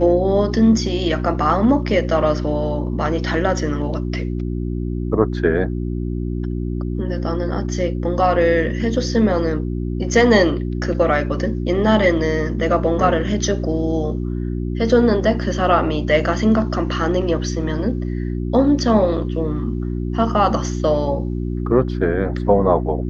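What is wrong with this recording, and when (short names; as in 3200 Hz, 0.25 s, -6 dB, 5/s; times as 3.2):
hum 60 Hz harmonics 6 -23 dBFS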